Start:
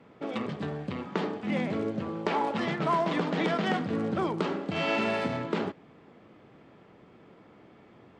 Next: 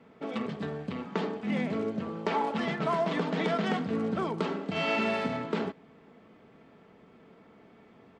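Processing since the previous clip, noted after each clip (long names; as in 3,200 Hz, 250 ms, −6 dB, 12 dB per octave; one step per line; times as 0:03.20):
comb filter 4.5 ms, depth 38%
level −2 dB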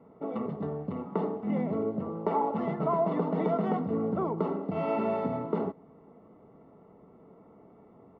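Savitzky-Golay smoothing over 65 samples
parametric band 230 Hz −4 dB 0.21 octaves
level +2 dB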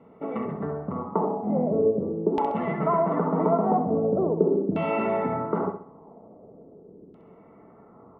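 auto-filter low-pass saw down 0.42 Hz 320–3,100 Hz
flutter between parallel walls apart 11.3 metres, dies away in 0.46 s
level +2.5 dB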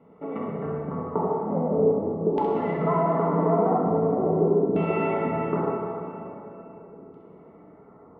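high-frequency loss of the air 71 metres
dense smooth reverb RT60 3.4 s, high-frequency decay 0.8×, DRR −1 dB
level −3 dB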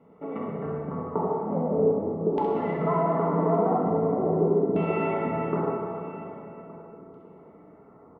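single-tap delay 1,167 ms −20.5 dB
level −1.5 dB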